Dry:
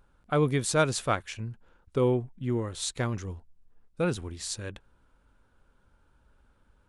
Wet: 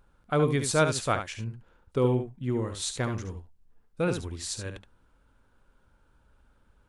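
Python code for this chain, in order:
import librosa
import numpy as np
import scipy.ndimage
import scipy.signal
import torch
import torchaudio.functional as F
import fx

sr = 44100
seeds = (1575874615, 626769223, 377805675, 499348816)

y = x + 10.0 ** (-8.0 / 20.0) * np.pad(x, (int(71 * sr / 1000.0), 0))[:len(x)]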